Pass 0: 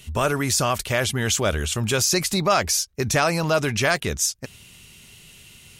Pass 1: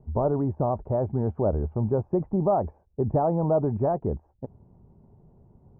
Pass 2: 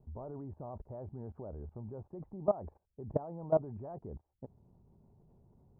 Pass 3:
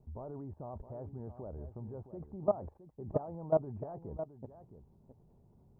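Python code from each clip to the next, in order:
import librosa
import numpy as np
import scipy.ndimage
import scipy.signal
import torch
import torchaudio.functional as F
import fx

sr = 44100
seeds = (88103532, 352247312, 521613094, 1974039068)

y1 = scipy.signal.sosfilt(scipy.signal.ellip(4, 1.0, 80, 880.0, 'lowpass', fs=sr, output='sos'), x)
y2 = fx.level_steps(y1, sr, step_db=20)
y2 = y2 * librosa.db_to_amplitude(-3.5)
y3 = y2 + 10.0 ** (-11.5 / 20.0) * np.pad(y2, (int(665 * sr / 1000.0), 0))[:len(y2)]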